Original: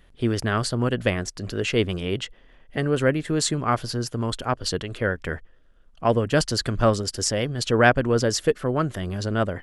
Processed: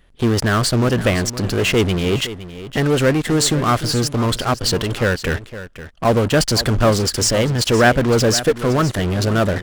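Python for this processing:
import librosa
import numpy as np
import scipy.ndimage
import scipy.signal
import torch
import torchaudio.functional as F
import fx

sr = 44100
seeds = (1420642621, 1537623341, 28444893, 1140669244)

p1 = fx.fuzz(x, sr, gain_db=36.0, gate_db=-39.0)
p2 = x + (p1 * 10.0 ** (-8.0 / 20.0))
p3 = p2 + 10.0 ** (-14.0 / 20.0) * np.pad(p2, (int(513 * sr / 1000.0), 0))[:len(p2)]
y = p3 * 10.0 ** (1.0 / 20.0)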